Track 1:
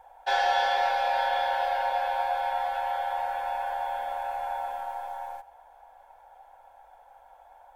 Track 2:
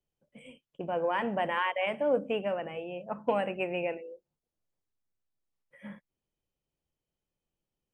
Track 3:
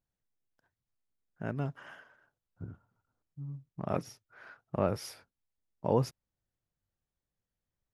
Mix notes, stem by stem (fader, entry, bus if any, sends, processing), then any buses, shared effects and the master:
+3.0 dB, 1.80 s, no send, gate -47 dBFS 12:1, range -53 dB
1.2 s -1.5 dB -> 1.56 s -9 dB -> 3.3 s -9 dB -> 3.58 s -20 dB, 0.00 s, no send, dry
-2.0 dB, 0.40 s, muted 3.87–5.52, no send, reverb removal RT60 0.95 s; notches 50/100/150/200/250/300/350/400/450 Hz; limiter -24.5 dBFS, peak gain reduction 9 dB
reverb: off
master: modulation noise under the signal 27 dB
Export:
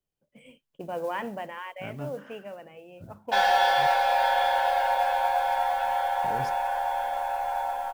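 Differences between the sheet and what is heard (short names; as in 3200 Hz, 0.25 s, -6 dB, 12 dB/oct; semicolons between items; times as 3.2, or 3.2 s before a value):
stem 1: entry 1.80 s -> 3.05 s; stem 3: missing reverb removal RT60 0.95 s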